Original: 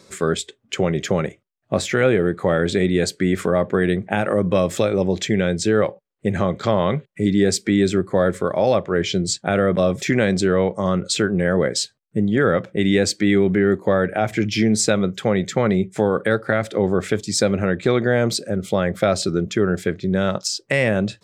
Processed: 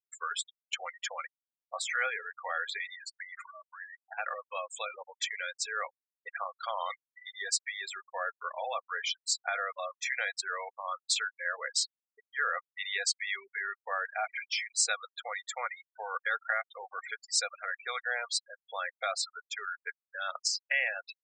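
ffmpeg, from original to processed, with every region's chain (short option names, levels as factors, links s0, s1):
-filter_complex "[0:a]asettb=1/sr,asplit=3[s0][s1][s2];[s0]atrim=end=2.944[s3];[s1]atrim=start=2.94:end=4.18,asetpts=PTS-STARTPTS,afade=t=in:d=0.004:c=qsin,afade=t=out:st=1.236:d=0.004:c=qsin,highpass=f=430:w=0.5412,highpass=f=430:w=1.3066,acompressor=threshold=0.0447:ratio=8:attack=3.2:release=140:knee=1:detection=peak[s4];[s2]atrim=start=4.176[s5];[s3][s4]acrossfade=d=0.004:c1=hsin:c2=qsin[s6];[s6][s5]acrossfade=d=0.004:c1=qsin:c2=hsin,highpass=f=870:w=0.5412,highpass=f=870:w=1.3066,afftfilt=real='re*gte(hypot(re,im),0.0562)':imag='im*gte(hypot(re,im),0.0562)':win_size=1024:overlap=0.75,aecho=1:1:4.2:0.38,volume=0.473"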